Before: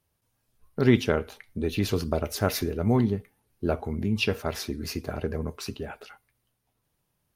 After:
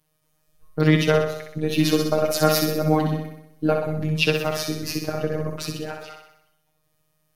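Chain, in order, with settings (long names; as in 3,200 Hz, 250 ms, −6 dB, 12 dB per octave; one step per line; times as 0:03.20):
0:01.70–0:03.76: comb filter 3.7 ms, depth 71%
phases set to zero 155 Hz
flutter between parallel walls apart 10.8 metres, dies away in 0.76 s
level +7 dB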